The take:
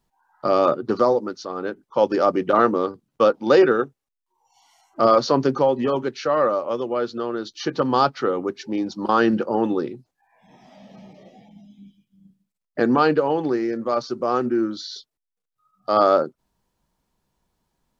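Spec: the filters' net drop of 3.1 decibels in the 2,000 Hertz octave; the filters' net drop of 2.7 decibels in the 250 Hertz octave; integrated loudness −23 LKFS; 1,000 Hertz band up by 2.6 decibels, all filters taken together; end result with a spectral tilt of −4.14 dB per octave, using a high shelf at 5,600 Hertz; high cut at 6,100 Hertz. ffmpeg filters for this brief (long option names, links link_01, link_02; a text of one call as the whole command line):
ffmpeg -i in.wav -af "lowpass=6100,equalizer=frequency=250:width_type=o:gain=-4,equalizer=frequency=1000:width_type=o:gain=6,equalizer=frequency=2000:width_type=o:gain=-9,highshelf=frequency=5600:gain=9,volume=-2.5dB" out.wav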